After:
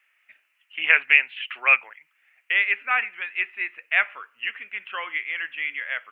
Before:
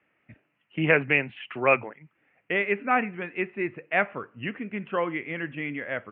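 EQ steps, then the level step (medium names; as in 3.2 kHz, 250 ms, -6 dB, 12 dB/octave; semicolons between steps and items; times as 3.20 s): high-pass 1.5 kHz 12 dB/octave; treble shelf 2.5 kHz +11.5 dB; +3.0 dB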